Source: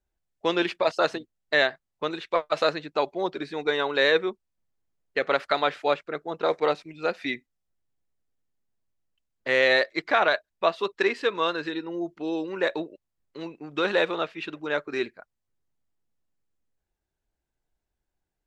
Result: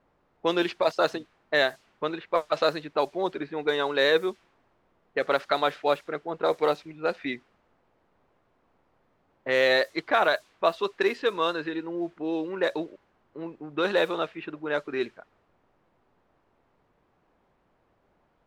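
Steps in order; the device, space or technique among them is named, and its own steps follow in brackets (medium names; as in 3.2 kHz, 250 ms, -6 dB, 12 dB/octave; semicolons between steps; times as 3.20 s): cassette deck with a dynamic noise filter (white noise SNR 27 dB; level-controlled noise filter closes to 840 Hz, open at -18.5 dBFS); dynamic bell 2.2 kHz, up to -4 dB, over -36 dBFS, Q 1.5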